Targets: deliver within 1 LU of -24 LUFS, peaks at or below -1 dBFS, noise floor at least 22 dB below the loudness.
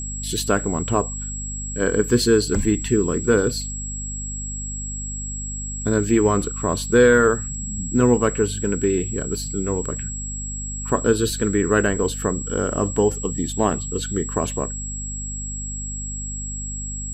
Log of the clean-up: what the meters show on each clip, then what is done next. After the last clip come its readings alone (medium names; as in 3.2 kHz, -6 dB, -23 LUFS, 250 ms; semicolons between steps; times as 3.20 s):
hum 50 Hz; highest harmonic 250 Hz; hum level -29 dBFS; steady tone 7.7 kHz; tone level -30 dBFS; loudness -22.0 LUFS; peak level -4.0 dBFS; loudness target -24.0 LUFS
-> de-hum 50 Hz, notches 5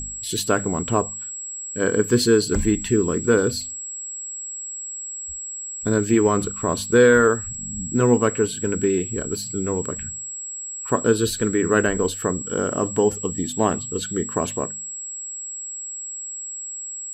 hum not found; steady tone 7.7 kHz; tone level -30 dBFS
-> band-stop 7.7 kHz, Q 30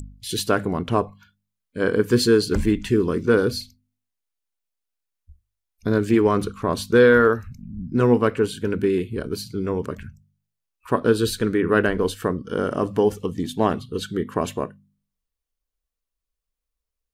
steady tone not found; loudness -21.5 LUFS; peak level -4.5 dBFS; loudness target -24.0 LUFS
-> trim -2.5 dB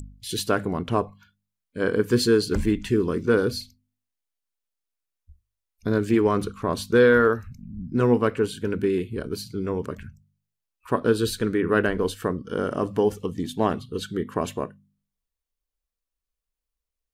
loudness -24.0 LUFS; peak level -7.0 dBFS; noise floor -86 dBFS